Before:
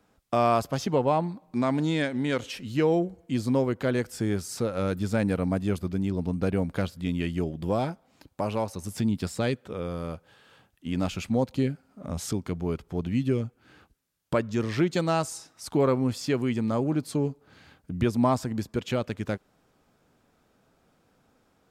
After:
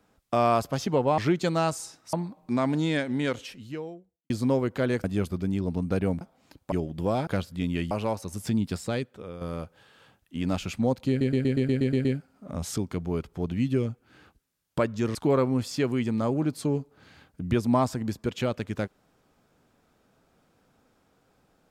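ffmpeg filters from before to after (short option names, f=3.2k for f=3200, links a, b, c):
-filter_complex "[0:a]asplit=19[a][b][c][d][e][f][g][h][i][j][k][l][m][n][o][p][q][r][s];[a]atrim=end=1.182[t];[b]atrim=start=14.698:end=15.652[u];[c]atrim=start=1.178:end=3.35,asetpts=PTS-STARTPTS,afade=t=out:st=1.122:d=1.05:c=qua[v];[d]atrim=start=3.35:end=4.092,asetpts=PTS-STARTPTS,afade=t=in:d=0.004:c=hsin[w];[e]atrim=start=5.548:end=6.722[x];[f]atrim=start=7.908:end=8.422[y];[g]atrim=start=7.358:end=7.912[z];[h]atrim=start=6.718:end=7.362[aa];[i]atrim=start=8.418:end=9.92,asetpts=PTS-STARTPTS,afade=t=out:st=0.732:d=0.77:silence=0.375837[ab];[j]atrim=start=9.92:end=11.722,asetpts=PTS-STARTPTS,afade=t=in:d=0.004:c=hsin:silence=0.375837[ac];[k]atrim=start=11.598:end=11.722[ad];[l]atrim=start=11.598:end=11.722[ae];[m]atrim=start=11.598:end=11.722[af];[n]atrim=start=11.598:end=11.722[ag];[o]atrim=start=11.598:end=11.722[ah];[p]atrim=start=11.598:end=11.722[ai];[q]atrim=start=11.598:end=11.722[aj];[r]atrim=start=11.598:end=14.702[ak];[s]atrim=start=15.648[al];[t][u]acrossfade=d=0.004:c1=hsin:c2=hsin[am];[v][w]concat=n=2:v=0:a=1[an];[am][an]acrossfade=d=0.004:c1=hsin:c2=hsin[ao];[ao][x]acrossfade=d=0.004:c1=hsin:c2=hsin[ap];[ap][y]acrossfade=d=0.004:c1=hsin:c2=hsin[aq];[aq][z]acrossfade=d=0.004:c1=hsin:c2=hsin[ar];[ar][aa]acrossfade=d=0.004:c1=hsin:c2=hsin[as];[ab][ac]concat=n=2:v=0:a=1[at];[as][at]acrossfade=d=0.004:c1=hsin:c2=hsin[au];[au][ad]acrossfade=d=0.004:c1=hsin:c2=hsin[av];[av][ae]acrossfade=d=0.004:c1=hsin:c2=hsin[aw];[aw][af]acrossfade=d=0.004:c1=hsin:c2=hsin[ax];[ax][ag]acrossfade=d=0.004:c1=hsin:c2=hsin[ay];[ay][ah]acrossfade=d=0.004:c1=hsin:c2=hsin[az];[az][ai]acrossfade=d=0.004:c1=hsin:c2=hsin[ba];[ba][aj]acrossfade=d=0.004:c1=hsin:c2=hsin[bb];[bb][ak]acrossfade=d=0.004:c1=hsin:c2=hsin[bc];[bc][al]acrossfade=d=0.004:c1=hsin:c2=hsin"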